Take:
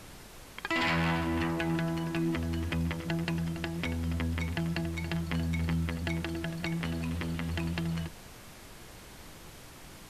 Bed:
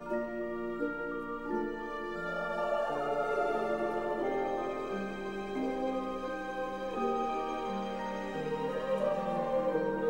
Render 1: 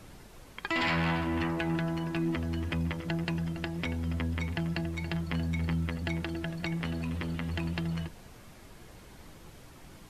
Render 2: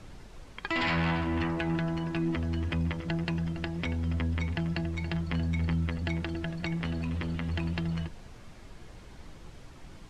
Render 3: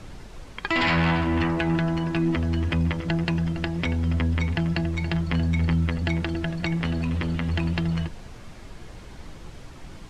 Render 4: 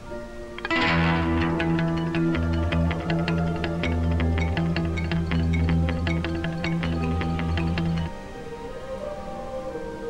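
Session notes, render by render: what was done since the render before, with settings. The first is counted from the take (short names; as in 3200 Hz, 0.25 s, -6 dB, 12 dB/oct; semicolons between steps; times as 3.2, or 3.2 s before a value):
denoiser 6 dB, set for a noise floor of -50 dBFS
LPF 7400 Hz 12 dB/oct; low shelf 69 Hz +7.5 dB
gain +6.5 dB
add bed -2 dB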